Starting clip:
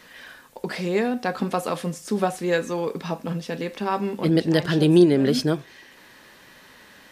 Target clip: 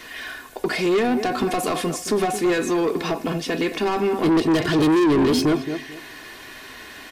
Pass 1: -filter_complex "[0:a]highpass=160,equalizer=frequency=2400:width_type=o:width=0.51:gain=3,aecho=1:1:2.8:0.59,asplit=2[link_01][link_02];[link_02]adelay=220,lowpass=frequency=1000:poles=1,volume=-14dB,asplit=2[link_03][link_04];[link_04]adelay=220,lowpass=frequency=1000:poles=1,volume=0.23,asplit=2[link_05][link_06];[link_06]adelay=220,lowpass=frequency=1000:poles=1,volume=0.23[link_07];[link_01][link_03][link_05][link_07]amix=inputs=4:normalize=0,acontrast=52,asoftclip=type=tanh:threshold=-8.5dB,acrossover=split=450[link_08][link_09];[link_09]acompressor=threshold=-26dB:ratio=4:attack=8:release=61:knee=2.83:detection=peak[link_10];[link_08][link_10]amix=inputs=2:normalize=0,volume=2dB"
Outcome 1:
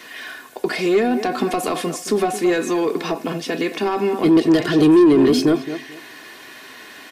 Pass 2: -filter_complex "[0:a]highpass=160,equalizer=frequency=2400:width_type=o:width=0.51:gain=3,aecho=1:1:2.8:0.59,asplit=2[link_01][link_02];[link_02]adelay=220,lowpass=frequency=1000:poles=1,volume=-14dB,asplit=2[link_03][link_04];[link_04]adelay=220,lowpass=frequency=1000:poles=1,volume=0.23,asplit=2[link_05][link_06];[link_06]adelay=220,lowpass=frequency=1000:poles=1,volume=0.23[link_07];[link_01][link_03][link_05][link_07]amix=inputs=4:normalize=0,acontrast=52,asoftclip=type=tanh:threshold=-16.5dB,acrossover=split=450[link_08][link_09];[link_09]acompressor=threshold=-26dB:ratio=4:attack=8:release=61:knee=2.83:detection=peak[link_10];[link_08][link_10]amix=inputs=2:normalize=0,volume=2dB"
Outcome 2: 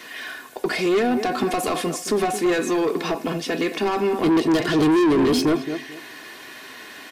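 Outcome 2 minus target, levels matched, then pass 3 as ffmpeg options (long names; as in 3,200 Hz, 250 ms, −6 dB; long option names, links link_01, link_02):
125 Hz band −2.5 dB
-filter_complex "[0:a]equalizer=frequency=2400:width_type=o:width=0.51:gain=3,aecho=1:1:2.8:0.59,asplit=2[link_01][link_02];[link_02]adelay=220,lowpass=frequency=1000:poles=1,volume=-14dB,asplit=2[link_03][link_04];[link_04]adelay=220,lowpass=frequency=1000:poles=1,volume=0.23,asplit=2[link_05][link_06];[link_06]adelay=220,lowpass=frequency=1000:poles=1,volume=0.23[link_07];[link_01][link_03][link_05][link_07]amix=inputs=4:normalize=0,acontrast=52,asoftclip=type=tanh:threshold=-16.5dB,acrossover=split=450[link_08][link_09];[link_09]acompressor=threshold=-26dB:ratio=4:attack=8:release=61:knee=2.83:detection=peak[link_10];[link_08][link_10]amix=inputs=2:normalize=0,volume=2dB"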